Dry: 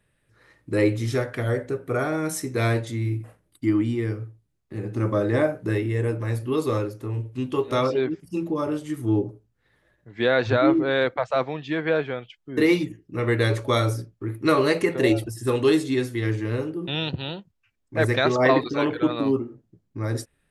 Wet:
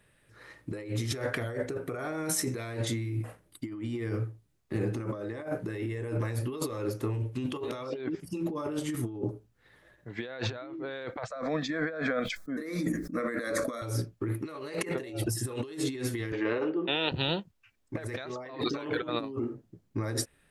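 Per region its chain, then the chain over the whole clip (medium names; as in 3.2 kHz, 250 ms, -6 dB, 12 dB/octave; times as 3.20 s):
11.28–13.82 s: static phaser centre 580 Hz, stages 8 + decay stretcher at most 66 dB/s
16.32–17.12 s: band-pass 340–3400 Hz + distance through air 81 m
whole clip: bass shelf 240 Hz -4.5 dB; compressor with a negative ratio -33 dBFS, ratio -1; trim -1 dB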